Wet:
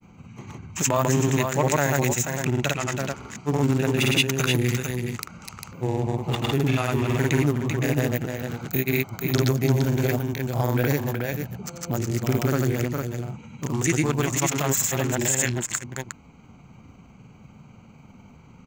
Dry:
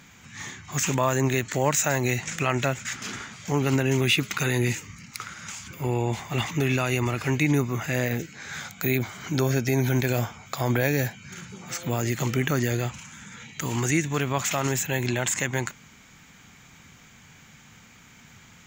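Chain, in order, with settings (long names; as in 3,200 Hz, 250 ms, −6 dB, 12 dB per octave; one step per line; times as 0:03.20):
adaptive Wiener filter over 25 samples
high-shelf EQ 7,700 Hz +9.5 dB
in parallel at −1.5 dB: downward compressor, threshold −39 dBFS, peak gain reduction 21 dB
on the sum: single-tap delay 384 ms −5.5 dB
granular cloud, pitch spread up and down by 0 semitones
level +1.5 dB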